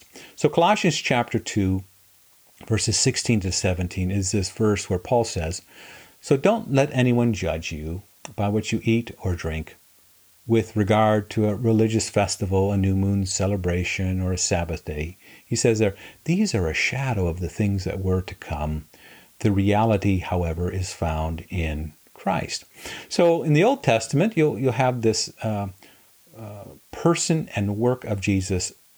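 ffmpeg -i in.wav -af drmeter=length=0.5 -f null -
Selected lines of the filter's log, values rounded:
Channel 1: DR: 11.3
Overall DR: 11.3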